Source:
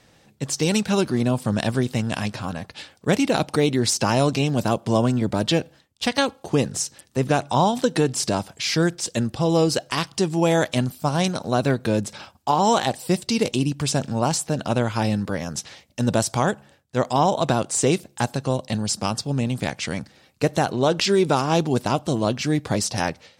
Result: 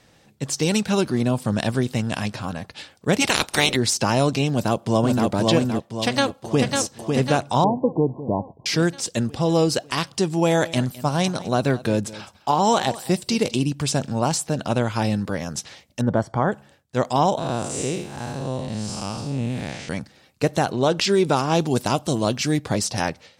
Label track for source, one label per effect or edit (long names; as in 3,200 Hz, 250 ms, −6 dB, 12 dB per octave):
3.200000	3.750000	ceiling on every frequency bin ceiling under each frame's peak by 25 dB
4.510000	5.270000	delay throw 520 ms, feedback 45%, level −2 dB
6.040000	6.670000	delay throw 550 ms, feedback 55%, level −4 dB
7.640000	8.660000	linear-phase brick-wall low-pass 1,100 Hz
10.300000	13.610000	single-tap delay 209 ms −18 dB
16.010000	16.520000	Savitzky-Golay smoothing over 41 samples
17.380000	19.890000	spectrum smeared in time width 200 ms
21.610000	22.590000	high-shelf EQ 4,700 Hz +7.5 dB